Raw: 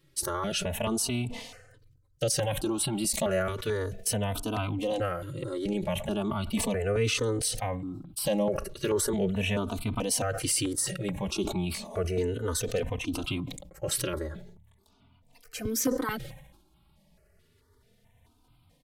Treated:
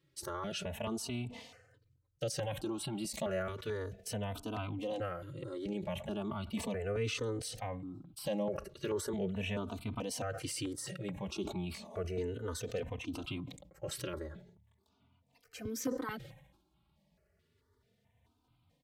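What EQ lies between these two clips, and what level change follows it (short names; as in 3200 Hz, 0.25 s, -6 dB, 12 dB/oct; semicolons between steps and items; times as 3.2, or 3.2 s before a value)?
HPF 57 Hz; high shelf 6500 Hz -7 dB; bell 10000 Hz -5.5 dB 0.23 oct; -8.0 dB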